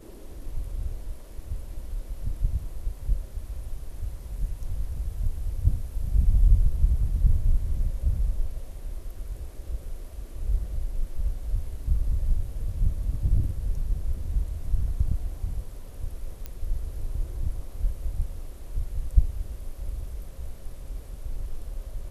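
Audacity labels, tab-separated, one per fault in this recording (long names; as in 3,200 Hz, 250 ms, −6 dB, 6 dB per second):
16.460000	16.460000	click −20 dBFS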